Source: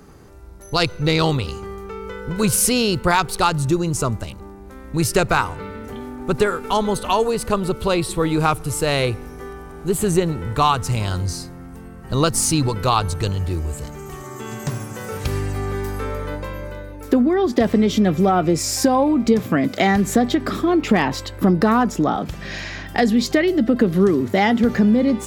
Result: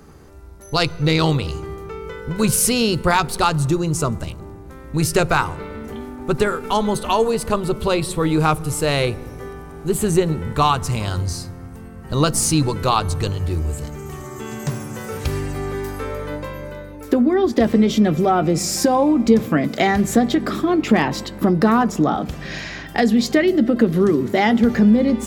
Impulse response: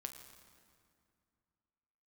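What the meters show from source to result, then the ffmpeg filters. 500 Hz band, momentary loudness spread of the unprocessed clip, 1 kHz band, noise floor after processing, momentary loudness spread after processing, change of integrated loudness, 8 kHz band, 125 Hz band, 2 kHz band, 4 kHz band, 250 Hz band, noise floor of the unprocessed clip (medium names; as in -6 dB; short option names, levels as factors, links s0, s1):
+0.5 dB, 16 LU, 0.0 dB, -37 dBFS, 16 LU, +0.5 dB, 0.0 dB, +0.5 dB, 0.0 dB, 0.0 dB, +1.0 dB, -38 dBFS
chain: -filter_complex "[0:a]asplit=2[s0][s1];[s1]tiltshelf=f=740:g=7[s2];[1:a]atrim=start_sample=2205,adelay=13[s3];[s2][s3]afir=irnorm=-1:irlink=0,volume=0.316[s4];[s0][s4]amix=inputs=2:normalize=0"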